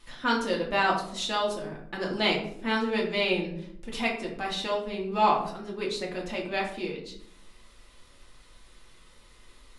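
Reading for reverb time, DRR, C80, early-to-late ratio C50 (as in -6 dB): 0.70 s, -2.0 dB, 10.5 dB, 6.0 dB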